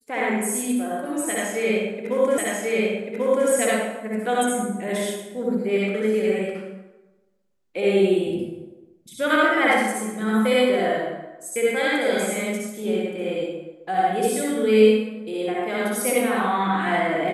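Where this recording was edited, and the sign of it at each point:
0:02.38: the same again, the last 1.09 s

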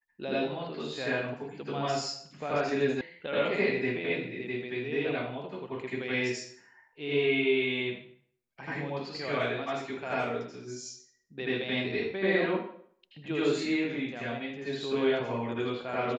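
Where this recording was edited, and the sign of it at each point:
0:03.01: cut off before it has died away

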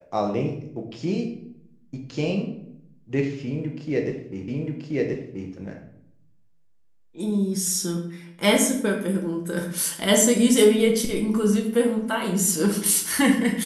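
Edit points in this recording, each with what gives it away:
0:04.48: the same again, the last 1.03 s

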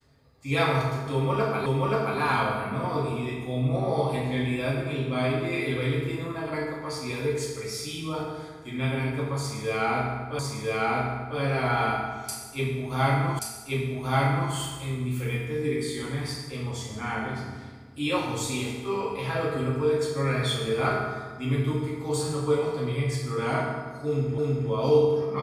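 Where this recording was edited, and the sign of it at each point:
0:01.66: the same again, the last 0.53 s
0:10.39: the same again, the last 1 s
0:13.39: the same again, the last 1.13 s
0:24.38: the same again, the last 0.32 s

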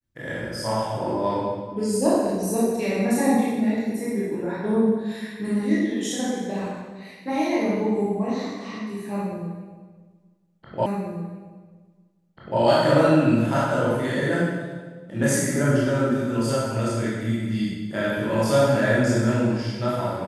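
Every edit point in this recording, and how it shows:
0:10.86: the same again, the last 1.74 s

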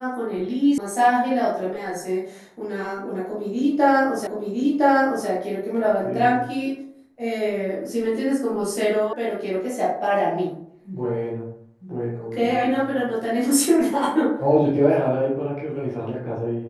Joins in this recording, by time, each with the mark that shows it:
0:00.78: cut off before it has died away
0:04.27: the same again, the last 1.01 s
0:09.13: cut off before it has died away

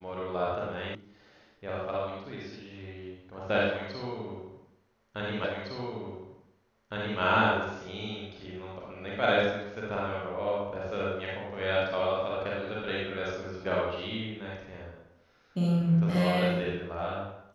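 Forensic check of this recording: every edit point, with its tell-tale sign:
0:00.95: cut off before it has died away
0:05.44: the same again, the last 1.76 s

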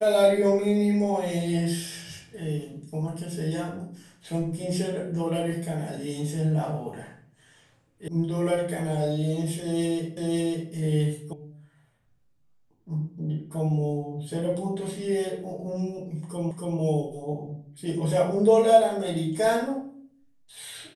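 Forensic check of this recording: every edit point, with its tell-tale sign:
0:08.08: cut off before it has died away
0:10.17: the same again, the last 0.55 s
0:11.33: cut off before it has died away
0:16.51: the same again, the last 0.28 s

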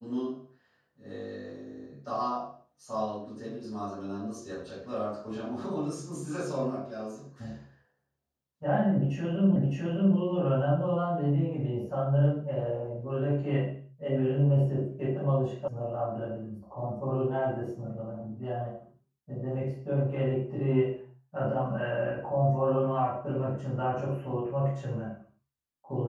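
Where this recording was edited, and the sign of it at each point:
0:09.56: the same again, the last 0.61 s
0:15.68: cut off before it has died away

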